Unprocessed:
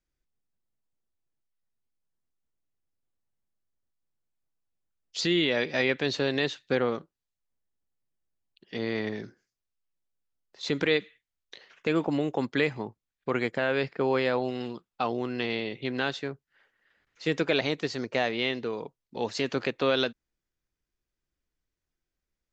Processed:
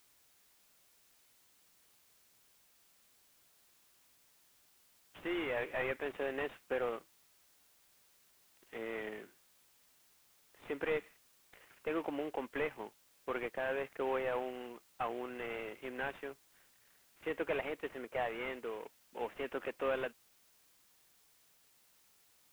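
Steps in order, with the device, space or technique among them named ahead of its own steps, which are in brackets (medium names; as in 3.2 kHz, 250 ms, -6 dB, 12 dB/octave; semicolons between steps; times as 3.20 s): army field radio (band-pass 390–3400 Hz; CVSD coder 16 kbps; white noise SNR 26 dB); trim -6.5 dB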